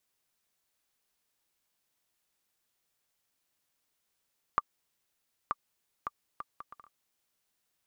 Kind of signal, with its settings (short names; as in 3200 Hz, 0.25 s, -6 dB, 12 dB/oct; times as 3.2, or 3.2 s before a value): bouncing ball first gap 0.93 s, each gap 0.6, 1180 Hz, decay 34 ms -13 dBFS